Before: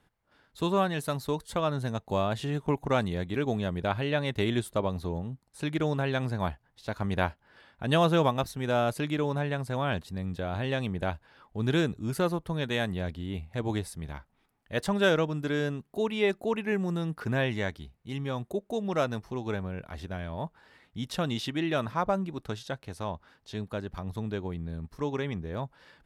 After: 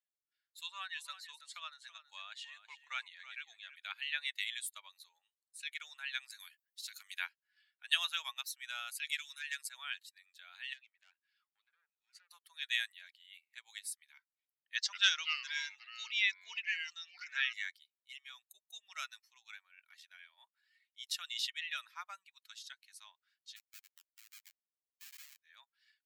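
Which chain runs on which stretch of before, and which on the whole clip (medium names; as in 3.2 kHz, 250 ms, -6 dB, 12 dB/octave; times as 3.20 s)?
0.63–3.76 s: low-pass 8.6 kHz + treble shelf 5.4 kHz -5.5 dB + delay 328 ms -9 dB
6.30–7.19 s: tilt EQ +3.5 dB/octave + band-stop 920 Hz, Q 8.1 + compression 3:1, threshold -35 dBFS
9.05–9.69 s: high-pass 1.2 kHz 24 dB/octave + treble shelf 2.5 kHz +7.5 dB + transformer saturation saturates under 2.6 kHz
10.73–12.31 s: low-pass that closes with the level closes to 970 Hz, closed at -22 dBFS + compression 4:1, threshold -33 dBFS + valve stage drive 36 dB, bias 0.55
14.75–17.53 s: resonant high shelf 7.8 kHz -12 dB, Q 3 + ever faster or slower copies 179 ms, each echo -4 st, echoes 2, each echo -6 dB
23.56–25.41 s: high-pass 280 Hz 6 dB/octave + Schmitt trigger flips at -36 dBFS
whole clip: expander on every frequency bin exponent 1.5; inverse Chebyshev high-pass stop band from 320 Hz, stop band 80 dB; level rider gain up to 3 dB; trim +1.5 dB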